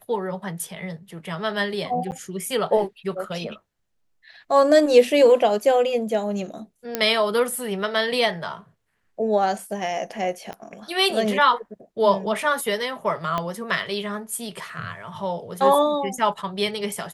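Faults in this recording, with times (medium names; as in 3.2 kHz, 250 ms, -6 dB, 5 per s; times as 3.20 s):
2.11–2.12 s: dropout 9.4 ms
6.95 s: pop -7 dBFS
10.53 s: pop -20 dBFS
13.38 s: pop -12 dBFS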